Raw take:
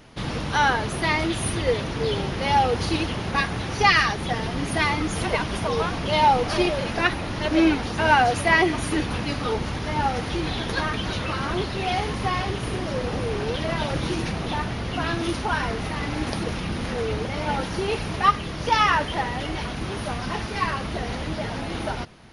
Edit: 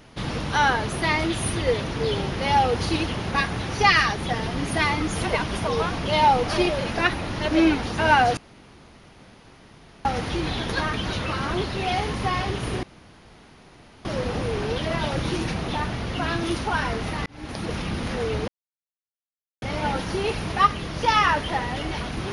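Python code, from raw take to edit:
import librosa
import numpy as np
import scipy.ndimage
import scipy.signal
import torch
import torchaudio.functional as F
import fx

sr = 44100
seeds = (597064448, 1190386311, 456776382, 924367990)

y = fx.edit(x, sr, fx.room_tone_fill(start_s=8.37, length_s=1.68),
    fx.insert_room_tone(at_s=12.83, length_s=1.22),
    fx.fade_in_span(start_s=16.04, length_s=0.51),
    fx.insert_silence(at_s=17.26, length_s=1.14), tone=tone)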